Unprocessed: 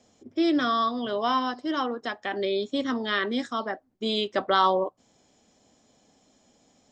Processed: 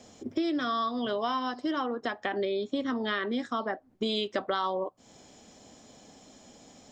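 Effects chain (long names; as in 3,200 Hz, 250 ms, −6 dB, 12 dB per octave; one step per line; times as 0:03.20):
0:01.73–0:04.03: high-shelf EQ 4,000 Hz −9 dB
downward compressor 5 to 1, threshold −38 dBFS, peak gain reduction 19 dB
level +9 dB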